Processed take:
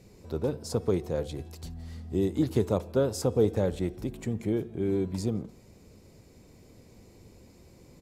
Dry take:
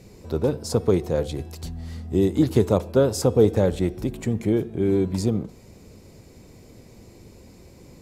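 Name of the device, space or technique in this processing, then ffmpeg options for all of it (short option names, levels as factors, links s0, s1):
ducked delay: -filter_complex "[0:a]asplit=3[s0][s1][s2];[s1]adelay=169,volume=0.398[s3];[s2]apad=whole_len=360961[s4];[s3][s4]sidechaincompress=threshold=0.0126:ratio=8:attack=16:release=1080[s5];[s0][s5]amix=inputs=2:normalize=0,volume=0.447"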